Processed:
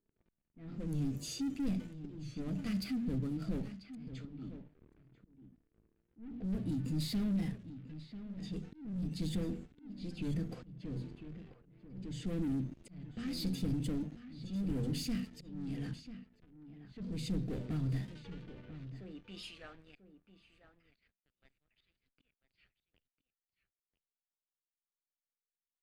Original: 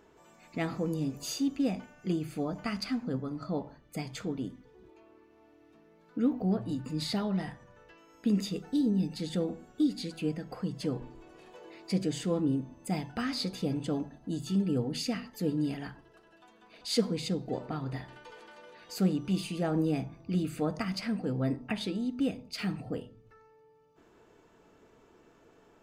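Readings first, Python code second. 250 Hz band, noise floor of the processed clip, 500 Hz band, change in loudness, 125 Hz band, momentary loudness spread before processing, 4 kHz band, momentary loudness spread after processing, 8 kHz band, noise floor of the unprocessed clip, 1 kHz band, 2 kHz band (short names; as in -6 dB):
-7.5 dB, under -85 dBFS, -14.0 dB, -6.5 dB, -4.0 dB, 12 LU, -9.0 dB, 15 LU, -8.0 dB, -62 dBFS, -16.5 dB, -11.5 dB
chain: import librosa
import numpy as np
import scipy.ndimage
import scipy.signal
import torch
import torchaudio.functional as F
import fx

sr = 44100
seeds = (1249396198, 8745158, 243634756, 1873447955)

y = fx.filter_sweep_highpass(x, sr, from_hz=150.0, to_hz=3000.0, start_s=18.3, end_s=20.16, q=0.88)
y = fx.hum_notches(y, sr, base_hz=60, count=4)
y = fx.leveller(y, sr, passes=5)
y = fx.auto_swell(y, sr, attack_ms=510.0)
y = fx.tone_stack(y, sr, knobs='10-0-1')
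y = y + 10.0 ** (-12.5 / 20.0) * np.pad(y, (int(992 * sr / 1000.0), 0))[:len(y)]
y = fx.env_lowpass(y, sr, base_hz=1500.0, full_db=-36.5)
y = fx.peak_eq(y, sr, hz=5700.0, db=-4.0, octaves=0.94)
y = fx.record_warp(y, sr, rpm=45.0, depth_cents=100.0)
y = y * librosa.db_to_amplitude(2.5)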